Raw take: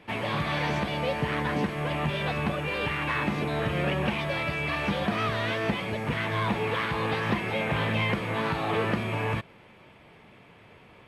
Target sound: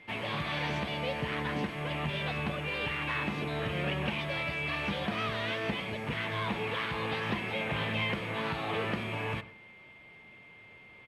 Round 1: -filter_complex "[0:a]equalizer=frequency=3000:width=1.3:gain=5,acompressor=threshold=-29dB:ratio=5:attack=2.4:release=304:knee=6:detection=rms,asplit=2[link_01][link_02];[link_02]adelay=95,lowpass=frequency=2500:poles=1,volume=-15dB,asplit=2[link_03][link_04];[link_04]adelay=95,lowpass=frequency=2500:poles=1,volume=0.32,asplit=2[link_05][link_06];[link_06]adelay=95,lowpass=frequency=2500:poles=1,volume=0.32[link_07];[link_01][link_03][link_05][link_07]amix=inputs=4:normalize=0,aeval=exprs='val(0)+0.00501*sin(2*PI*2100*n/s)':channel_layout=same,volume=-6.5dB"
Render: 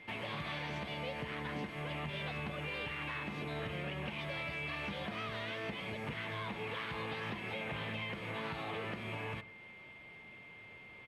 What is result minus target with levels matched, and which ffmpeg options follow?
downward compressor: peak gain reduction +11 dB
-filter_complex "[0:a]equalizer=frequency=3000:width=1.3:gain=5,asplit=2[link_01][link_02];[link_02]adelay=95,lowpass=frequency=2500:poles=1,volume=-15dB,asplit=2[link_03][link_04];[link_04]adelay=95,lowpass=frequency=2500:poles=1,volume=0.32,asplit=2[link_05][link_06];[link_06]adelay=95,lowpass=frequency=2500:poles=1,volume=0.32[link_07];[link_01][link_03][link_05][link_07]amix=inputs=4:normalize=0,aeval=exprs='val(0)+0.00501*sin(2*PI*2100*n/s)':channel_layout=same,volume=-6.5dB"

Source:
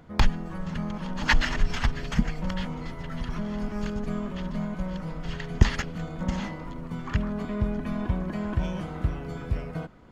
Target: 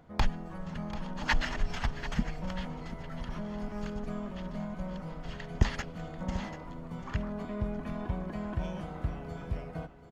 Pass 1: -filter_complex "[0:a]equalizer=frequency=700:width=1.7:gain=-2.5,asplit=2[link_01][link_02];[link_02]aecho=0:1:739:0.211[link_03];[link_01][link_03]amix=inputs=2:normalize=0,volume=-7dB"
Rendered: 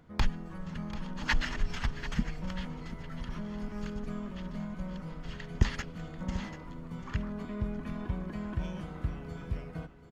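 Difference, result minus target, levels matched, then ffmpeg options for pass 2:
500 Hz band −3.0 dB
-filter_complex "[0:a]equalizer=frequency=700:width=1.7:gain=5,asplit=2[link_01][link_02];[link_02]aecho=0:1:739:0.211[link_03];[link_01][link_03]amix=inputs=2:normalize=0,volume=-7dB"

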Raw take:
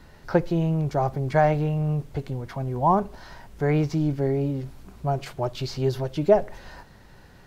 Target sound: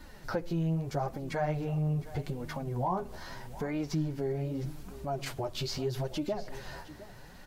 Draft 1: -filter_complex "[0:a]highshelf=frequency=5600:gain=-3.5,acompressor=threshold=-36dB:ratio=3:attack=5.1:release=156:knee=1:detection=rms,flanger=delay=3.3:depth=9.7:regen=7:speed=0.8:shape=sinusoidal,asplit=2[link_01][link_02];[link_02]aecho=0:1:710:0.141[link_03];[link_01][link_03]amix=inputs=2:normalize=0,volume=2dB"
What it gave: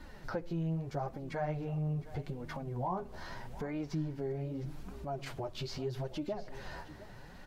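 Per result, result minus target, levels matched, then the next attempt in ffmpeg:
8,000 Hz band −4.5 dB; downward compressor: peak gain reduction +4.5 dB
-filter_complex "[0:a]highshelf=frequency=5600:gain=6.5,acompressor=threshold=-36dB:ratio=3:attack=5.1:release=156:knee=1:detection=rms,flanger=delay=3.3:depth=9.7:regen=7:speed=0.8:shape=sinusoidal,asplit=2[link_01][link_02];[link_02]aecho=0:1:710:0.141[link_03];[link_01][link_03]amix=inputs=2:normalize=0,volume=2dB"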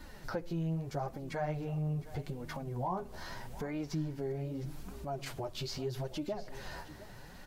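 downward compressor: peak gain reduction +4.5 dB
-filter_complex "[0:a]highshelf=frequency=5600:gain=6.5,acompressor=threshold=-29.5dB:ratio=3:attack=5.1:release=156:knee=1:detection=rms,flanger=delay=3.3:depth=9.7:regen=7:speed=0.8:shape=sinusoidal,asplit=2[link_01][link_02];[link_02]aecho=0:1:710:0.141[link_03];[link_01][link_03]amix=inputs=2:normalize=0,volume=2dB"

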